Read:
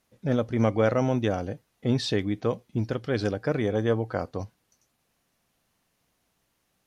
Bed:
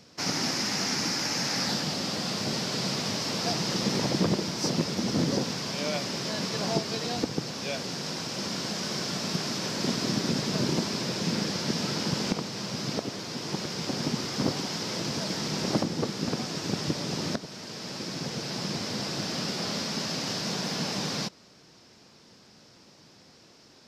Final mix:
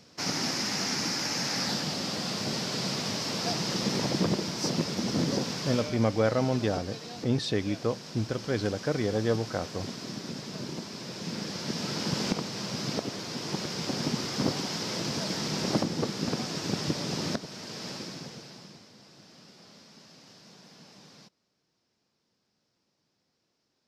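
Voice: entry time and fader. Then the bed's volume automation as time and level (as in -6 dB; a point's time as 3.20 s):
5.40 s, -2.5 dB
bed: 5.73 s -1.5 dB
5.96 s -10 dB
10.89 s -10 dB
12.21 s -0.5 dB
17.89 s -0.5 dB
18.92 s -22 dB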